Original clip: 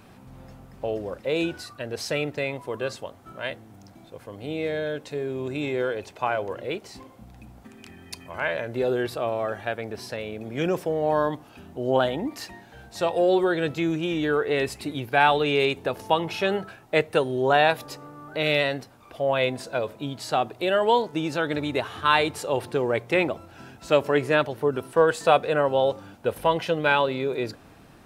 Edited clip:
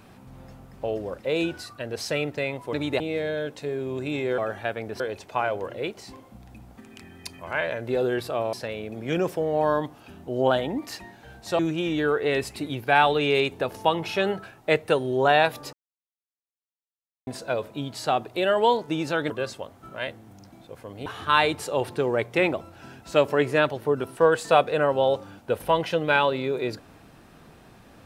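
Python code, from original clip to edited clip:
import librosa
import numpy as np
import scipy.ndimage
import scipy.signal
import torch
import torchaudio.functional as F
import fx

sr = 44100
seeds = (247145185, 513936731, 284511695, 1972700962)

y = fx.edit(x, sr, fx.swap(start_s=2.73, length_s=1.76, other_s=21.55, other_length_s=0.27),
    fx.move(start_s=9.4, length_s=0.62, to_s=5.87),
    fx.cut(start_s=13.08, length_s=0.76),
    fx.silence(start_s=17.98, length_s=1.54), tone=tone)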